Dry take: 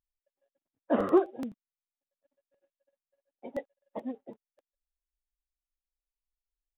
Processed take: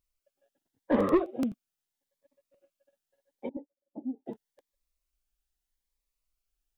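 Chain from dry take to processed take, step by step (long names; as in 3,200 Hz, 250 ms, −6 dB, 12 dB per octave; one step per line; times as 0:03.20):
in parallel at −3 dB: downward compressor, threshold −31 dBFS, peak gain reduction 13 dB
on the sum: soft clipping −18.5 dBFS, distortion −12 dB
0:03.49–0:04.26: formant resonators in series u
phaser whose notches keep moving one way rising 0.81 Hz
level +3.5 dB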